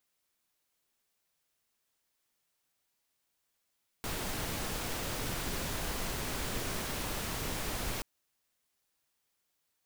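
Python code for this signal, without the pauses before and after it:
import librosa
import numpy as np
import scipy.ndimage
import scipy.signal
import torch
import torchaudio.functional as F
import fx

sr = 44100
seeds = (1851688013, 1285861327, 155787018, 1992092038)

y = fx.noise_colour(sr, seeds[0], length_s=3.98, colour='pink', level_db=-36.0)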